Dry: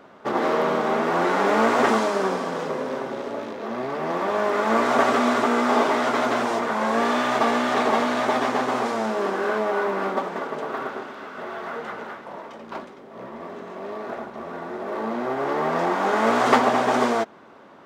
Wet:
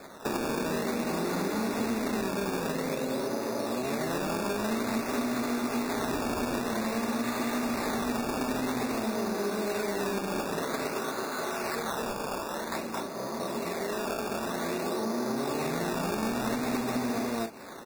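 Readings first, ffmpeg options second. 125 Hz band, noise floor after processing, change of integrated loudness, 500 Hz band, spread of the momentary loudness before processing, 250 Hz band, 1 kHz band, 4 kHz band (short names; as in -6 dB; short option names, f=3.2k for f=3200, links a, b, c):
0.0 dB, -36 dBFS, -8.5 dB, -8.5 dB, 16 LU, -3.5 dB, -11.5 dB, -4.5 dB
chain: -filter_complex "[0:a]asplit=2[a][b];[b]aecho=0:1:221.6|256.6:0.891|0.316[c];[a][c]amix=inputs=2:normalize=0,acrossover=split=310|3000[d][e][f];[e]acompressor=threshold=-32dB:ratio=5[g];[d][g][f]amix=inputs=3:normalize=0,acrusher=samples=15:mix=1:aa=0.000001:lfo=1:lforange=15:lforate=0.51,acompressor=threshold=-29dB:ratio=6,asuperstop=centerf=3100:order=20:qfactor=5.2,volume=2dB"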